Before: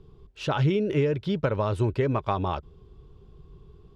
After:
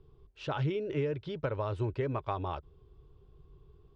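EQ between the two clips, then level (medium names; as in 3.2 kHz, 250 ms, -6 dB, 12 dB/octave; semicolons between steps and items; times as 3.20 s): distance through air 91 m; peaking EQ 200 Hz -11.5 dB 0.35 oct; -7.0 dB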